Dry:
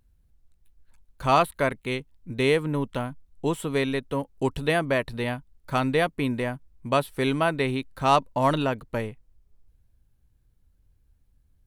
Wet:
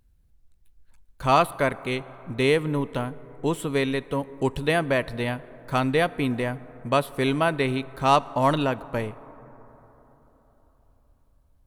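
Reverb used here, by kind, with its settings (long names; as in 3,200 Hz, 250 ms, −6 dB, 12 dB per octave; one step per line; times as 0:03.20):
dense smooth reverb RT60 4.2 s, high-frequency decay 0.3×, DRR 18 dB
level +1 dB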